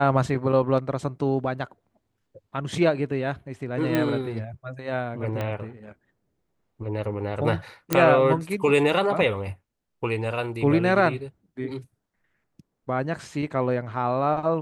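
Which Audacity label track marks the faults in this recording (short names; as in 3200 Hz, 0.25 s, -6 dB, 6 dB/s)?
3.950000	3.950000	pop -11 dBFS
5.410000	5.410000	pop -16 dBFS
7.930000	7.930000	pop -4 dBFS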